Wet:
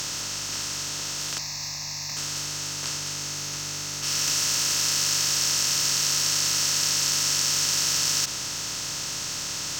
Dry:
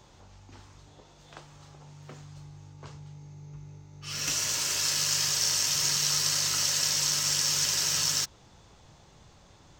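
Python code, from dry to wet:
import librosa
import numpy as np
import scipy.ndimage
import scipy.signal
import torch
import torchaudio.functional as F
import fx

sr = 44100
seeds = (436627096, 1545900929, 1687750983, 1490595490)

y = fx.bin_compress(x, sr, power=0.2)
y = fx.fixed_phaser(y, sr, hz=2100.0, stages=8, at=(1.38, 2.17))
y = y * 10.0 ** (-3.0 / 20.0)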